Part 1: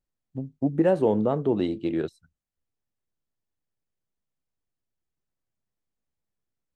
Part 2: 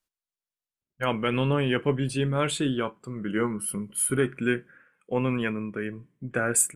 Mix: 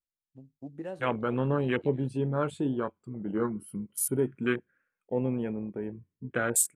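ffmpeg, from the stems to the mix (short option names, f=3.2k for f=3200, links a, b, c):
-filter_complex "[0:a]highshelf=f=2k:g=8.5,volume=-18dB[a];[1:a]afwtdn=0.0355,lowshelf=f=99:g=-6,volume=-2dB,asplit=2[b][c];[c]apad=whole_len=297767[d];[a][d]sidechaincompress=threshold=-34dB:ratio=8:attack=37:release=134[e];[e][b]amix=inputs=2:normalize=0,equalizer=f=91:t=o:w=0.22:g=5.5"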